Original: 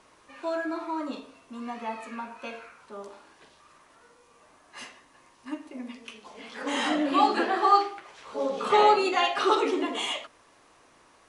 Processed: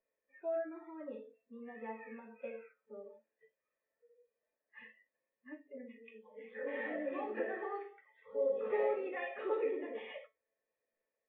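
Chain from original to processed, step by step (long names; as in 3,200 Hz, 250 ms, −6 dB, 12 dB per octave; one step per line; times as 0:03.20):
noise reduction from a noise print of the clip's start 23 dB
in parallel at +2.5 dB: downward compressor, threshold −37 dBFS, peak gain reduction 21 dB
on the sum: formant resonators in series e
dynamic equaliser 320 Hz, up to +3 dB, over −48 dBFS, Q 1.7
tuned comb filter 220 Hz, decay 0.2 s, harmonics all, mix 80%
level +6.5 dB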